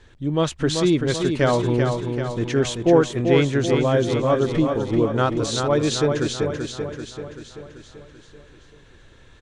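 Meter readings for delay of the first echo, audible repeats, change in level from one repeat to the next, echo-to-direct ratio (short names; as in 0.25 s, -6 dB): 0.386 s, 6, -5.0 dB, -4.0 dB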